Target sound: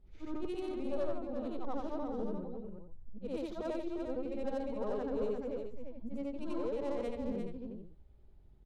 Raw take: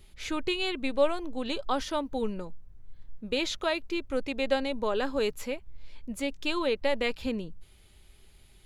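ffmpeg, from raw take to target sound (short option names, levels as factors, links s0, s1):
-filter_complex "[0:a]afftfilt=real='re':imag='-im':win_size=8192:overlap=0.75,adynamicsmooth=sensitivity=1.5:basefreq=1900,asoftclip=type=tanh:threshold=0.0398,equalizer=f=2400:w=0.6:g=-14,asplit=2[s0][s1];[s1]aecho=0:1:349:0.473[s2];[s0][s2]amix=inputs=2:normalize=0,volume=1.12"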